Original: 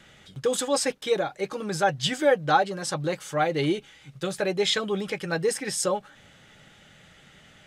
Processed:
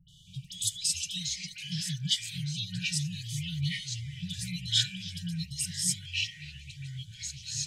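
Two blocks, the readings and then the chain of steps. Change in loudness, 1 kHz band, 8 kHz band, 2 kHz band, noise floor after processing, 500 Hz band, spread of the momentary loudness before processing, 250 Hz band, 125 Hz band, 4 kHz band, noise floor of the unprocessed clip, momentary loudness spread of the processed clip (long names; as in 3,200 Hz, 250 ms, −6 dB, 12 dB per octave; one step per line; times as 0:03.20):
−6.0 dB, below −40 dB, +1.0 dB, −9.0 dB, −52 dBFS, below −40 dB, 8 LU, −8.5 dB, +1.5 dB, +1.0 dB, −54 dBFS, 14 LU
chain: all-pass dispersion highs, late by 89 ms, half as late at 1,800 Hz
brick-wall band-stop 190–2,900 Hz
delay with pitch and tempo change per echo 184 ms, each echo −4 semitones, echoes 3, each echo −6 dB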